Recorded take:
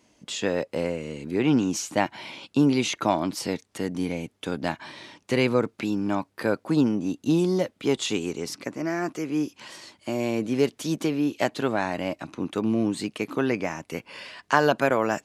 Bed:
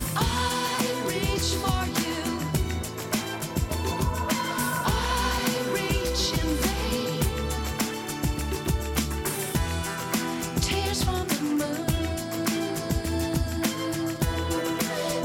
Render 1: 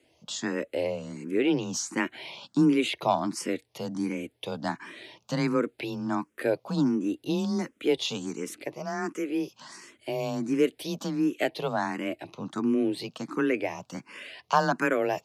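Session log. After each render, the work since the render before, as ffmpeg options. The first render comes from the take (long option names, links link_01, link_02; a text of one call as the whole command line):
ffmpeg -i in.wav -filter_complex "[0:a]afreqshift=20,asplit=2[link_01][link_02];[link_02]afreqshift=1.4[link_03];[link_01][link_03]amix=inputs=2:normalize=1" out.wav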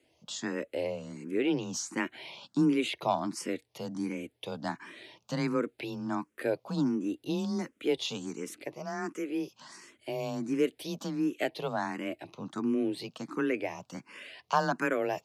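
ffmpeg -i in.wav -af "volume=-4dB" out.wav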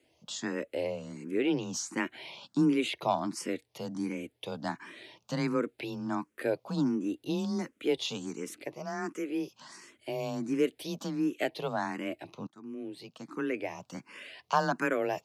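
ffmpeg -i in.wav -filter_complex "[0:a]asplit=2[link_01][link_02];[link_01]atrim=end=12.47,asetpts=PTS-STARTPTS,afade=type=out:start_time=12.466:duration=0.004:curve=hsin:silence=0.0749894[link_03];[link_02]atrim=start=12.47,asetpts=PTS-STARTPTS,afade=type=in:duration=1.45:silence=0.0749894[link_04];[link_03][link_04]concat=n=2:v=0:a=1" out.wav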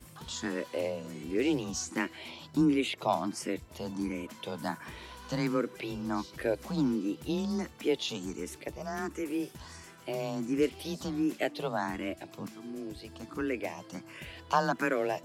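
ffmpeg -i in.wav -i bed.wav -filter_complex "[1:a]volume=-23dB[link_01];[0:a][link_01]amix=inputs=2:normalize=0" out.wav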